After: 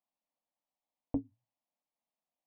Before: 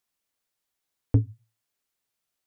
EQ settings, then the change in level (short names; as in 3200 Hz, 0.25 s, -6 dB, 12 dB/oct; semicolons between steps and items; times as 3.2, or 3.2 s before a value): LPF 1100 Hz 12 dB/oct; tilt +2.5 dB/oct; fixed phaser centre 400 Hz, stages 6; +2.0 dB